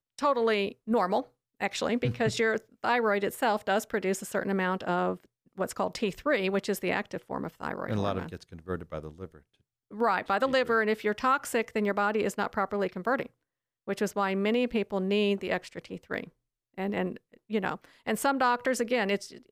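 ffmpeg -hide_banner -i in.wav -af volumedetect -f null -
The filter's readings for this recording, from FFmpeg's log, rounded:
mean_volume: -29.8 dB
max_volume: -13.2 dB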